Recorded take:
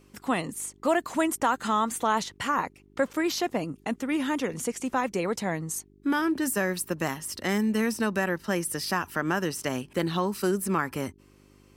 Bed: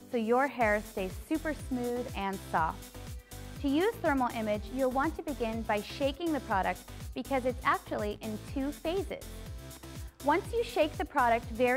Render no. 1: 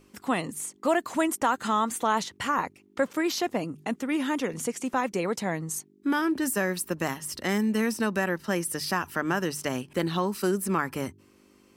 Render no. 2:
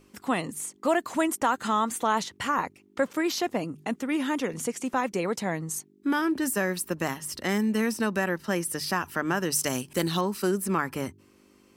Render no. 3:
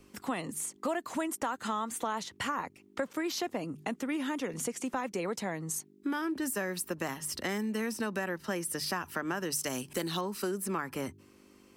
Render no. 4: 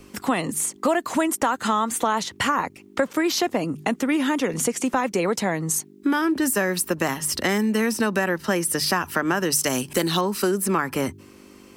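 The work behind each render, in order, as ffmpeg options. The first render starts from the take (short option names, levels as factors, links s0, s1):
-af "bandreject=f=50:t=h:w=4,bandreject=f=100:t=h:w=4,bandreject=f=150:t=h:w=4"
-filter_complex "[0:a]asettb=1/sr,asplit=3[s0][s1][s2];[s0]atrim=end=9.524[s3];[s1]atrim=start=9.52:end=10.21,asetpts=PTS-STARTPTS,afade=t=in:d=0.004:c=qsin,afade=t=out:st=0.686:d=0.004:c=qsin,bass=f=250:g=1,treble=f=4000:g=11[s4];[s2]atrim=start=10.206[s5];[s3][s4]acrossfade=d=0.004:c1=hsin:c2=qsin[s6];[s6][s5]acrossfade=d=0.004:c1=qsin:c2=hsin"
-filter_complex "[0:a]acrossover=split=200|990[s0][s1][s2];[s0]alimiter=level_in=5.01:limit=0.0631:level=0:latency=1,volume=0.2[s3];[s3][s1][s2]amix=inputs=3:normalize=0,acompressor=threshold=0.0251:ratio=3"
-af "volume=3.76"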